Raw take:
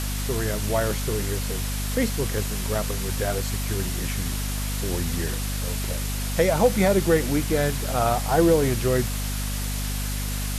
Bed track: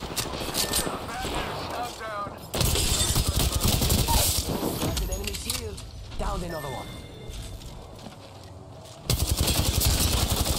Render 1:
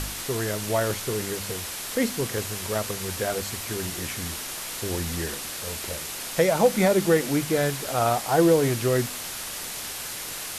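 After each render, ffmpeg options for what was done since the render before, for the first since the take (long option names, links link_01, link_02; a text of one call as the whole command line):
ffmpeg -i in.wav -af "bandreject=frequency=50:width_type=h:width=4,bandreject=frequency=100:width_type=h:width=4,bandreject=frequency=150:width_type=h:width=4,bandreject=frequency=200:width_type=h:width=4,bandreject=frequency=250:width_type=h:width=4" out.wav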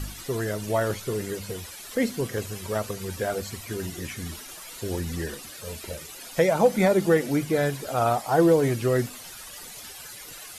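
ffmpeg -i in.wav -af "afftdn=noise_reduction=13:noise_floor=-35" out.wav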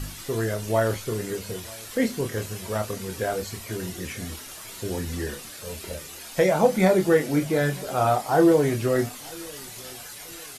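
ffmpeg -i in.wav -filter_complex "[0:a]asplit=2[link_01][link_02];[link_02]adelay=27,volume=-6dB[link_03];[link_01][link_03]amix=inputs=2:normalize=0,asplit=2[link_04][link_05];[link_05]adelay=940,lowpass=frequency=2000:poles=1,volume=-23dB,asplit=2[link_06][link_07];[link_07]adelay=940,lowpass=frequency=2000:poles=1,volume=0.39,asplit=2[link_08][link_09];[link_09]adelay=940,lowpass=frequency=2000:poles=1,volume=0.39[link_10];[link_04][link_06][link_08][link_10]amix=inputs=4:normalize=0" out.wav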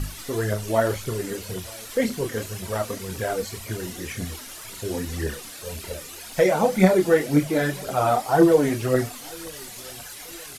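ffmpeg -i in.wav -af "aphaser=in_gain=1:out_gain=1:delay=4.5:decay=0.47:speed=1.9:type=triangular" out.wav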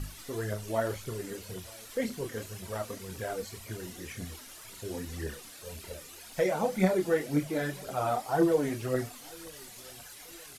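ffmpeg -i in.wav -af "volume=-9dB" out.wav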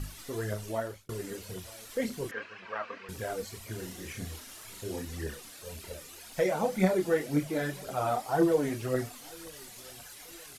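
ffmpeg -i in.wav -filter_complex "[0:a]asettb=1/sr,asplit=3[link_01][link_02][link_03];[link_01]atrim=end=2.314[link_04];[link_02]atrim=start=2.31:end=3.09,asetpts=PTS-STARTPTS,afade=type=in:duration=0.004:curve=qsin,afade=type=out:start_time=0.776:duration=0.004:curve=qsin,highpass=360,equalizer=frequency=370:width_type=q:width=4:gain=-6,equalizer=frequency=630:width_type=q:width=4:gain=-4,equalizer=frequency=1100:width_type=q:width=4:gain=7,equalizer=frequency=1600:width_type=q:width=4:gain=9,equalizer=frequency=2500:width_type=q:width=4:gain=8,equalizer=frequency=3600:width_type=q:width=4:gain=-6,lowpass=frequency=3800:width=0.5412,lowpass=frequency=3800:width=1.3066[link_05];[link_03]atrim=start=3.086[link_06];[link_04][link_05]acrossfade=duration=0.004:curve1=hsin:curve2=qsin[link_07];[link_07][link_06]acrossfade=duration=0.004:curve1=qsin:curve2=hsin,asettb=1/sr,asplit=3[link_08][link_09][link_10];[link_08]atrim=end=3.724[link_11];[link_09]atrim=start=3.72:end=5.02,asetpts=PTS-STARTPTS,afade=type=in:duration=0.004:curve=qsin,afade=type=out:start_time=1.296:duration=0.004:curve=qsin,asplit=2[link_12][link_13];[link_13]adelay=37,volume=-7dB[link_14];[link_12][link_14]amix=inputs=2:normalize=0,atrim=end_sample=57330[link_15];[link_10]atrim=start=5.016[link_16];[link_11][link_15]acrossfade=duration=0.004:curve1=hsin:curve2=qsin[link_17];[link_17][link_16]acrossfade=duration=0.004:curve1=qsin:curve2=hsin,asplit=2[link_18][link_19];[link_18]atrim=end=1.09,asetpts=PTS-STARTPTS,afade=type=out:start_time=0.64:duration=0.45[link_20];[link_19]atrim=start=1.09,asetpts=PTS-STARTPTS,afade=type=in:duration=0.004:curve=hsin[link_21];[link_20][link_21]concat=n=2:v=0:a=1" out.wav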